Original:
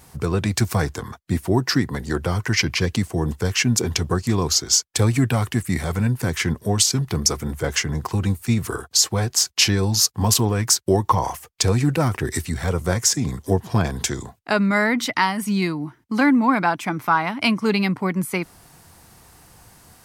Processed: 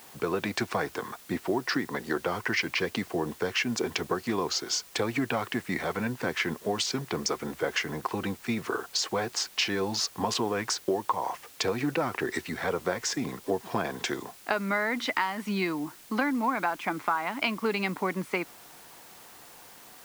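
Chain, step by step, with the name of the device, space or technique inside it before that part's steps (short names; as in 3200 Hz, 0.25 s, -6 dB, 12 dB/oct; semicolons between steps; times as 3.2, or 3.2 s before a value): baby monitor (BPF 320–3300 Hz; compressor, threshold -24 dBFS, peak gain reduction 11.5 dB; white noise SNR 21 dB)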